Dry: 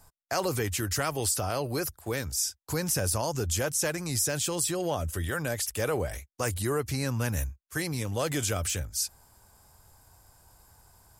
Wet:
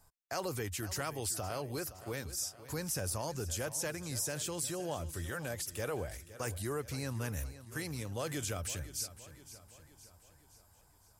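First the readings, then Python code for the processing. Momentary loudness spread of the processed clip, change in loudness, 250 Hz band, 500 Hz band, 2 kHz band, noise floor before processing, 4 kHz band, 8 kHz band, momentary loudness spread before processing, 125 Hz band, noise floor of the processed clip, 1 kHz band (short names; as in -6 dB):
7 LU, -8.5 dB, -8.5 dB, -8.5 dB, -8.5 dB, -73 dBFS, -8.5 dB, -8.5 dB, 5 LU, -8.0 dB, -65 dBFS, -8.5 dB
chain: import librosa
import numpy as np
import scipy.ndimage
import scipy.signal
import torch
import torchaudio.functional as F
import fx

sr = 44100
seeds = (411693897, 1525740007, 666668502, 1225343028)

y = fx.echo_feedback(x, sr, ms=516, feedback_pct=52, wet_db=-15)
y = y * 10.0 ** (-8.5 / 20.0)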